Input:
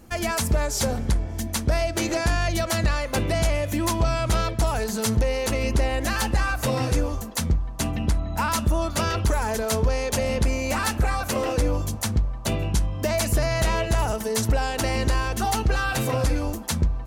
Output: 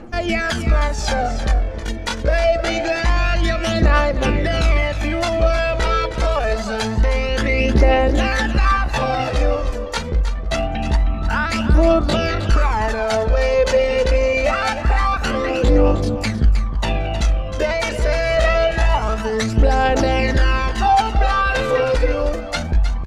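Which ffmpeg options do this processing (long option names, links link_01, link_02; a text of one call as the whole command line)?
ffmpeg -i in.wav -filter_complex "[0:a]lowpass=3400,equalizer=frequency=93:width_type=o:width=2:gain=-11.5,bandreject=frequency=1000:width=11,asplit=2[link_01][link_02];[link_02]alimiter=limit=-23.5dB:level=0:latency=1:release=266,volume=-1.5dB[link_03];[link_01][link_03]amix=inputs=2:normalize=0,aphaser=in_gain=1:out_gain=1:delay=2.2:decay=0.61:speed=0.34:type=triangular,atempo=0.74,aecho=1:1:313:0.299,volume=3.5dB" out.wav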